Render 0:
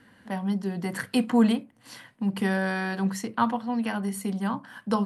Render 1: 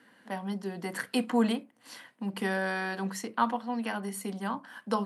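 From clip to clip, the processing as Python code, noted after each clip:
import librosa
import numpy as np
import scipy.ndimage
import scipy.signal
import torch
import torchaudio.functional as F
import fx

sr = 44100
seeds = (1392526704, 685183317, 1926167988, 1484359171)

y = scipy.signal.sosfilt(scipy.signal.butter(2, 260.0, 'highpass', fs=sr, output='sos'), x)
y = y * 10.0 ** (-2.0 / 20.0)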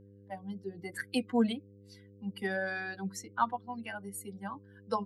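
y = fx.bin_expand(x, sr, power=2.0)
y = fx.dmg_buzz(y, sr, base_hz=100.0, harmonics=5, level_db=-56.0, tilt_db=-4, odd_only=False)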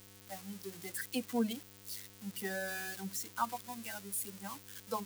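y = x + 0.5 * 10.0 ** (-28.5 / 20.0) * np.diff(np.sign(x), prepend=np.sign(x[:1]))
y = y * 10.0 ** (-5.5 / 20.0)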